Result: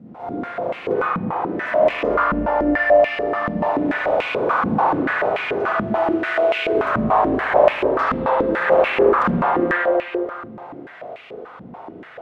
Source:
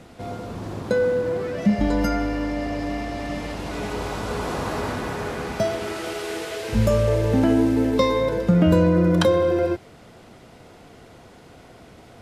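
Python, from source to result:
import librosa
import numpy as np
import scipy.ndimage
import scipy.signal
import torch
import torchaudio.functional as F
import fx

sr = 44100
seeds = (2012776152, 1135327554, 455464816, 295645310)

y = fx.quant_companded(x, sr, bits=6)
y = fx.fold_sine(y, sr, drive_db=15, ceiling_db=-4.5)
y = y + 10.0 ** (-6.0 / 20.0) * np.pad(y, (int(76 * sr / 1000.0), 0))[:len(y)]
y = fx.rev_spring(y, sr, rt60_s=2.3, pass_ms=(37, 59), chirp_ms=30, drr_db=-9.0)
y = fx.filter_held_bandpass(y, sr, hz=6.9, low_hz=210.0, high_hz=2500.0)
y = y * 10.0 ** (-9.5 / 20.0)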